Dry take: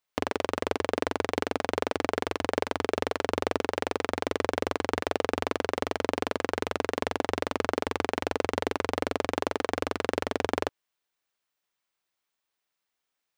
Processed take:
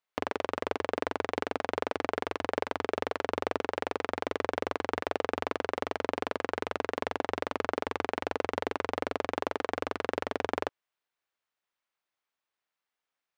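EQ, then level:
low-shelf EQ 400 Hz −7.5 dB
high-shelf EQ 4,000 Hz −12 dB
0.0 dB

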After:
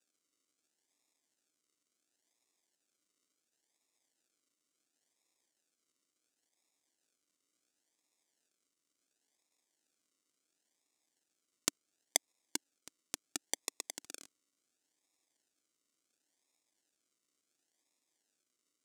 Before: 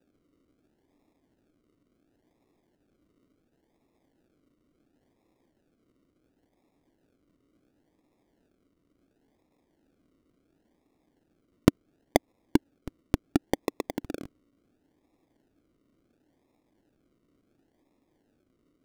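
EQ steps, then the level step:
resonant band-pass 7,500 Hz, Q 1.8
+9.5 dB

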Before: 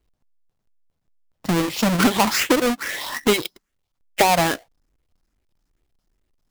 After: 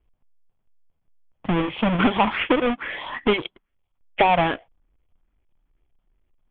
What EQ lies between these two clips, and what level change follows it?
Chebyshev low-pass with heavy ripple 3,400 Hz, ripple 3 dB
low-shelf EQ 74 Hz +8 dB
0.0 dB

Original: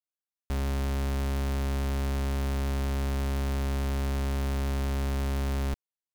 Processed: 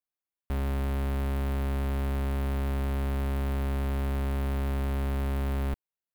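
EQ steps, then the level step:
parametric band 5,900 Hz −12 dB 1.2 octaves
0.0 dB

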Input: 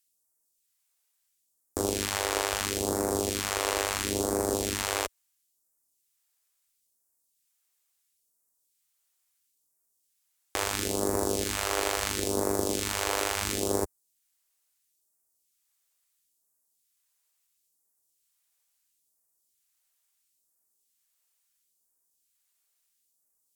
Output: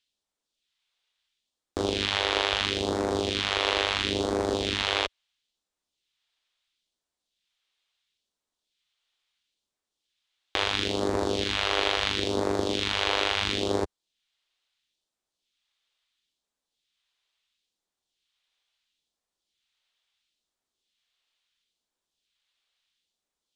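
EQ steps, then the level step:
low-pass with resonance 3,500 Hz, resonance Q 2.9
+1.5 dB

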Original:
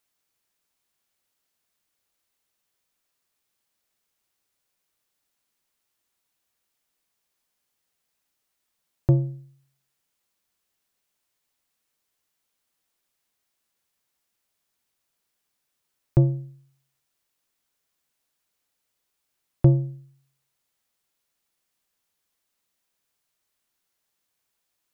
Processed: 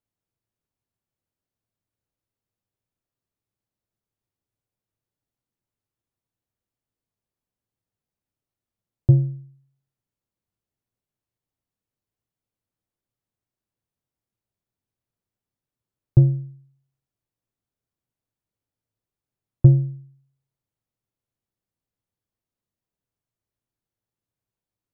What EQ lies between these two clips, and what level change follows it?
tilt shelving filter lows +7 dB
parametric band 110 Hz +9 dB 0.51 octaves
low-shelf EQ 330 Hz +5 dB
−10.5 dB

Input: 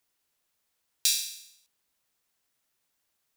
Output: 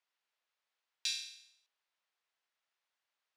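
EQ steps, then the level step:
band-pass filter 650–3,800 Hz
−4.0 dB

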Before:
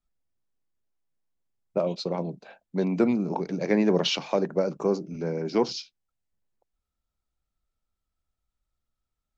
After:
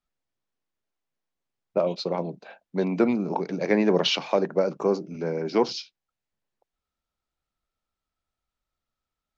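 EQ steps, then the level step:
Bessel low-pass filter 4,900 Hz, order 2
low-shelf EQ 84 Hz −7.5 dB
low-shelf EQ 330 Hz −5 dB
+4.0 dB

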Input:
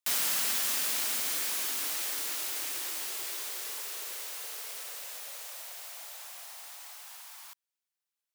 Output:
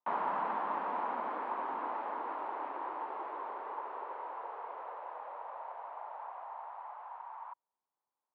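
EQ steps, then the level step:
high-pass filter 200 Hz 12 dB per octave
low-pass with resonance 950 Hz, resonance Q 4.9
high-frequency loss of the air 470 metres
+5.0 dB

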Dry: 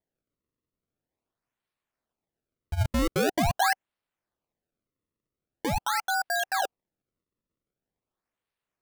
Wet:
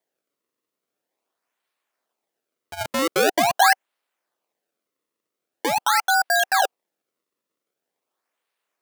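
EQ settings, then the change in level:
high-pass filter 410 Hz 12 dB per octave
+8.5 dB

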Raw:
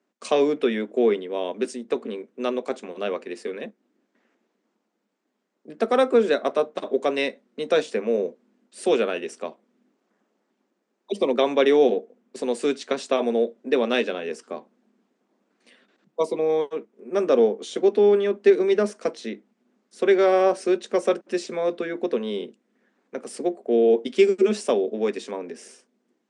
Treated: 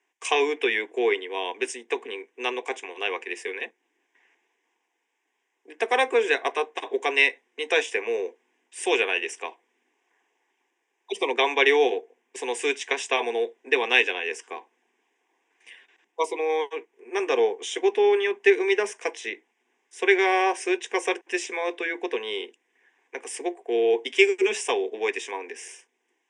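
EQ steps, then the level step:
band-pass filter 390–4,700 Hz
spectral tilt +4.5 dB per octave
phaser with its sweep stopped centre 880 Hz, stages 8
+6.0 dB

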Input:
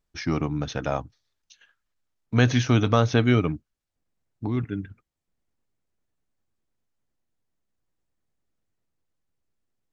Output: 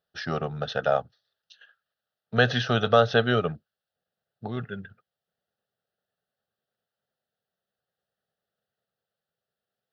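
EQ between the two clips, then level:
high-pass filter 220 Hz 12 dB per octave
high-shelf EQ 5,000 Hz −7.5 dB
phaser with its sweep stopped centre 1,500 Hz, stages 8
+6.0 dB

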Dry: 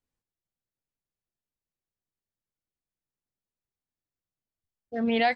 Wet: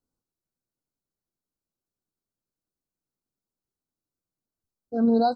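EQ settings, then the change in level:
linear-phase brick-wall band-stop 1,600–3,800 Hz
parametric band 280 Hz +7 dB 1.7 octaves
0.0 dB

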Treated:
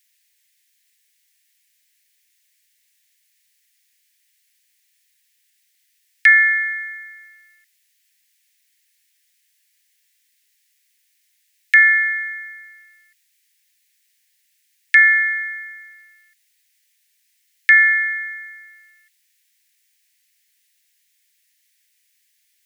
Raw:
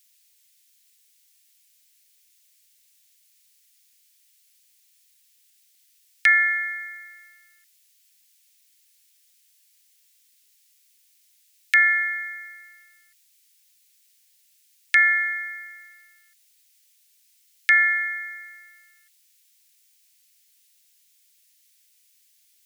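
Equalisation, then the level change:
high-pass with resonance 1,800 Hz, resonance Q 3.6
−4.0 dB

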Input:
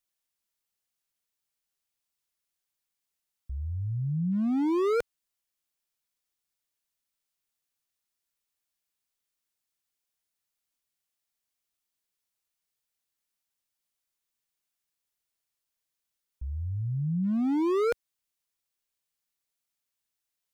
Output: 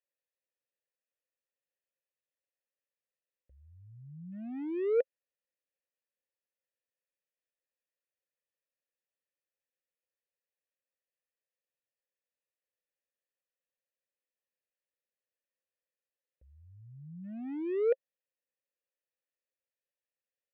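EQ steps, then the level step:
formant filter e
high-frequency loss of the air 220 metres
high-shelf EQ 4,300 Hz −9.5 dB
+8.0 dB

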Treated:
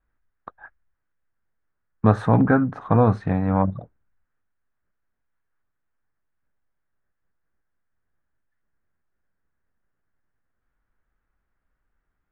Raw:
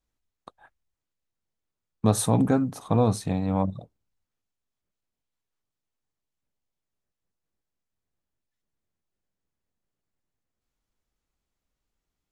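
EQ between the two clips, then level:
low-pass with resonance 1,600 Hz, resonance Q 3.4
low-shelf EQ 66 Hz +7.5 dB
+3.0 dB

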